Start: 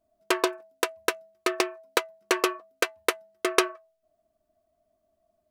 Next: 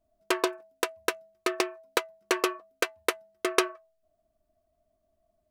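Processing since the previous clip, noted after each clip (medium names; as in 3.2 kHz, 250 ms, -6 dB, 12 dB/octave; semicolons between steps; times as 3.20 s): bass shelf 94 Hz +11.5 dB; trim -2.5 dB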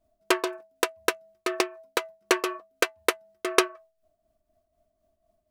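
tremolo triangle 4 Hz, depth 60%; trim +4.5 dB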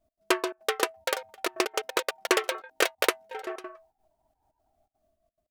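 trance gate "x.xxxx.x.xx" 173 bpm -24 dB; ever faster or slower copies 429 ms, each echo +3 st, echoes 2; trim -1.5 dB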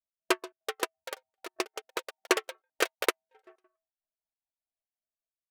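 upward expansion 2.5:1, over -42 dBFS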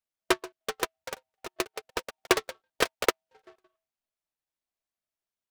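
delay time shaken by noise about 1.8 kHz, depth 0.052 ms; trim +2 dB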